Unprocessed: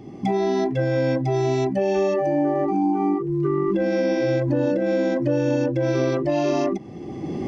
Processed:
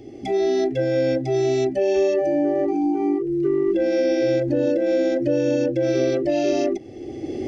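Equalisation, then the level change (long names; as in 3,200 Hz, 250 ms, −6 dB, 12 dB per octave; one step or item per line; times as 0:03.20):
phaser with its sweep stopped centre 430 Hz, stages 4
+3.0 dB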